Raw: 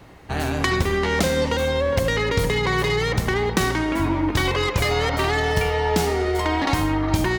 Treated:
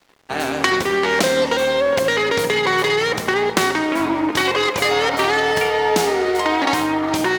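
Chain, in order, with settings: HPF 280 Hz 12 dB/oct; crossover distortion -45.5 dBFS; Doppler distortion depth 0.18 ms; gain +5.5 dB

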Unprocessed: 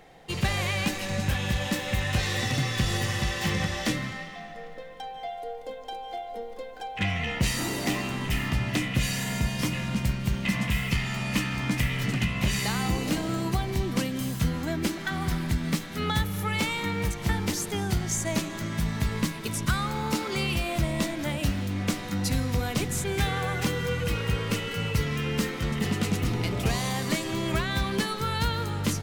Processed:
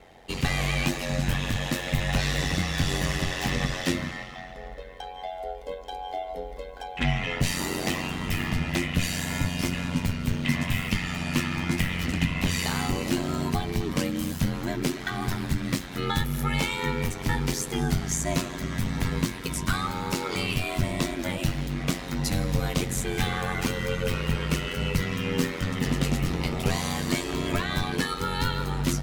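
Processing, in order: flange 0.32 Hz, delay 8.5 ms, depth 2.9 ms, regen +60%; ring modulator 45 Hz; gain +7.5 dB

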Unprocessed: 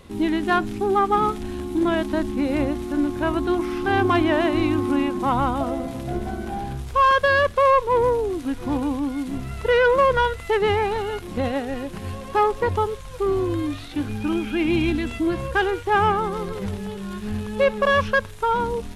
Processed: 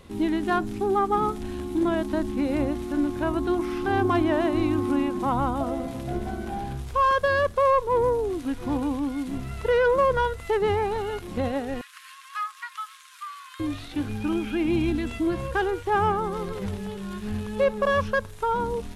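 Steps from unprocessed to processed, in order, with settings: 11.81–13.6 steep high-pass 1100 Hz 72 dB/oct; dynamic EQ 2600 Hz, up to -6 dB, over -34 dBFS, Q 0.77; gain -2.5 dB

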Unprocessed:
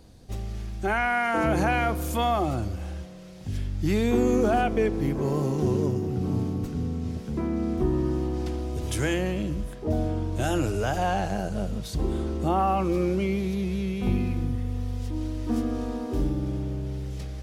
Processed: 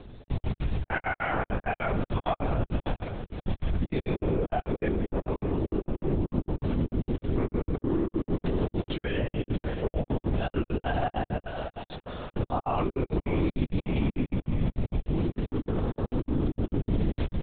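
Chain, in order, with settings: in parallel at -3 dB: negative-ratio compressor -30 dBFS; 11.46–12.34 on the sum: HPF 740 Hz 12 dB/oct; limiter -19 dBFS, peak gain reduction 7.5 dB; feedback echo 0.63 s, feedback 47%, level -11.5 dB; step gate "xxx.x.x." 199 bpm -60 dB; LPC vocoder at 8 kHz whisper

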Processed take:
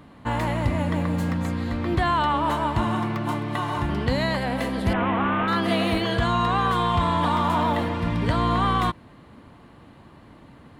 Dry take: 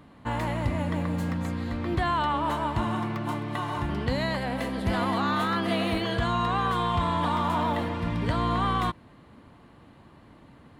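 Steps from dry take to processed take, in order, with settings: 4.93–5.48 CVSD 16 kbps; gain +4 dB

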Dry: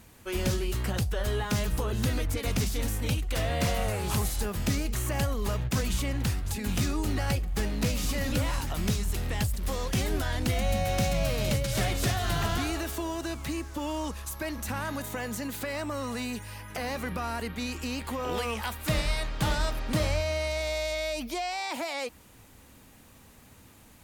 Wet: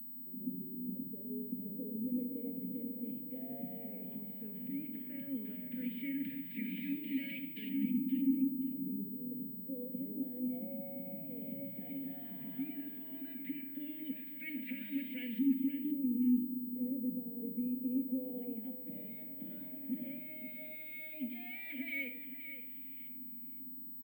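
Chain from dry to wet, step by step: HPF 130 Hz 24 dB/oct; limiter -26 dBFS, peak gain reduction 10 dB; vowel filter i; hum 50 Hz, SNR 31 dB; LFO low-pass saw up 0.13 Hz 260–2800 Hz; fixed phaser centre 340 Hz, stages 6; feedback echo 0.523 s, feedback 21%, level -11 dB; shoebox room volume 2000 m³, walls furnished, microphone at 1.9 m; pulse-width modulation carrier 16000 Hz; gain +2.5 dB

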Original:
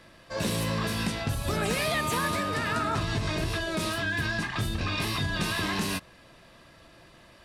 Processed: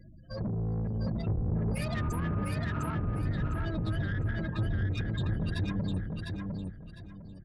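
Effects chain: tone controls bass +15 dB, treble +10 dB; spectral gate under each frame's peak -15 dB strong; soft clip -23.5 dBFS, distortion -7 dB; on a send: feedback echo 0.704 s, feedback 26%, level -3.5 dB; on the sum: gain -6 dB

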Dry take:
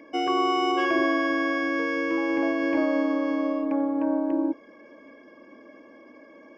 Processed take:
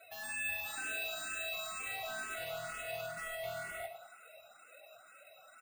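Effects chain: LPF 3300 Hz 12 dB/oct; limiter -17.5 dBFS, peak gain reduction 4.5 dB; fixed phaser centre 1000 Hz, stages 4; time stretch by phase-locked vocoder 2×; soft clip -35.5 dBFS, distortion -9 dB; doubler 41 ms -10.5 dB; tape echo 0.248 s, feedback 72%, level -8.5 dB, low-pass 1400 Hz; speed mistake 33 rpm record played at 78 rpm; careless resampling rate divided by 4×, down filtered, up hold; endless phaser +2.1 Hz

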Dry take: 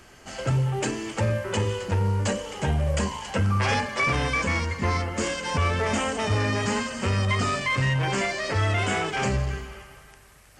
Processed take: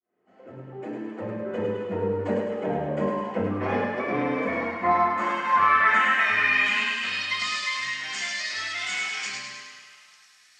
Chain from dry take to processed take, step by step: opening faded in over 2.28 s; band-pass sweep 460 Hz -> 5200 Hz, 4.2–7.59; thinning echo 0.104 s, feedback 55%, high-pass 450 Hz, level -4 dB; reverb RT60 0.70 s, pre-delay 3 ms, DRR -8 dB; gain +1 dB

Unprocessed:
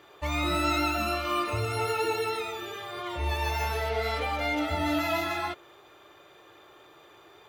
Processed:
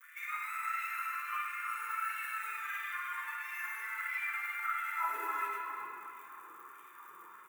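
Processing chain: on a send: echo 0.244 s -16 dB; on the sum: grains, pitch spread up and down by 0 st; crackle 170/s -44 dBFS; in parallel at -5 dB: sample-and-hold 41×; on the sum: compressor, threshold -33 dBFS, peak gain reduction 11.5 dB; high-pass sweep 1900 Hz -> 150 Hz, 4.54–5.69; EQ curve 160 Hz 0 dB, 450 Hz -11 dB, 660 Hz -28 dB, 1000 Hz +8 dB, 2200 Hz -7 dB, 4300 Hz -28 dB, 7600 Hz -13 dB, 14000 Hz -8 dB; LFO high-pass sine 1.5 Hz 460–2500 Hz; pre-emphasis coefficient 0.8; shoebox room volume 170 m³, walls hard, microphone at 0.55 m; gain +8 dB

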